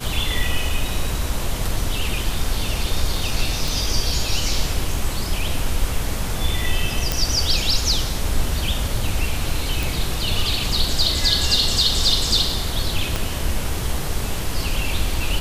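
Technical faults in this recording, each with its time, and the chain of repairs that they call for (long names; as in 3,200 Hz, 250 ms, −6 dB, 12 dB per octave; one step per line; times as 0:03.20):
0:03.68: click
0:07.12: click
0:09.83: click
0:13.16: click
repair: click removal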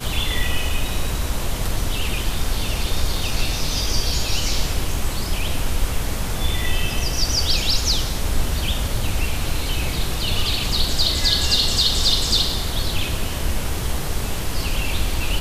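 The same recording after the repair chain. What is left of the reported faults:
0:13.16: click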